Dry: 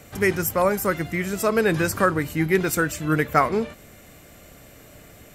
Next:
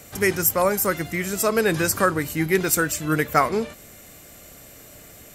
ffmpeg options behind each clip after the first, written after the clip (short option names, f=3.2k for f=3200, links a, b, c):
-af "bass=f=250:g=-2,treble=f=4k:g=7"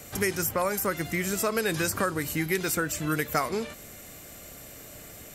-filter_complex "[0:a]acrossover=split=1200|3100[a][b][c];[a]acompressor=threshold=-27dB:ratio=4[d];[b]acompressor=threshold=-33dB:ratio=4[e];[c]acompressor=threshold=-30dB:ratio=4[f];[d][e][f]amix=inputs=3:normalize=0"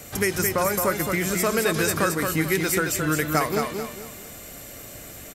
-af "aecho=1:1:219|438|657|876:0.562|0.186|0.0612|0.0202,volume=3.5dB"